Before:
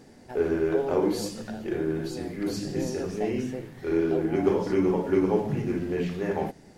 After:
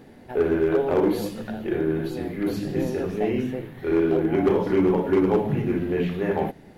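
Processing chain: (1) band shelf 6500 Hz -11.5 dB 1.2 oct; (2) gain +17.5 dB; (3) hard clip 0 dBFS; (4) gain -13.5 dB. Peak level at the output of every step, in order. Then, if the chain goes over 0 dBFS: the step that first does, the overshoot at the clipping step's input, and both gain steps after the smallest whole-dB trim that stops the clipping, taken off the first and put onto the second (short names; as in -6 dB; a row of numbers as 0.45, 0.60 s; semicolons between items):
-10.5, +7.0, 0.0, -13.5 dBFS; step 2, 7.0 dB; step 2 +10.5 dB, step 4 -6.5 dB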